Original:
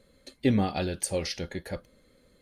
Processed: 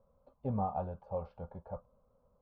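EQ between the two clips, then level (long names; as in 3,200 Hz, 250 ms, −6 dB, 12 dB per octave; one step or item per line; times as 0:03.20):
transistor ladder low-pass 1,200 Hz, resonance 50%
phaser with its sweep stopped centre 790 Hz, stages 4
+3.5 dB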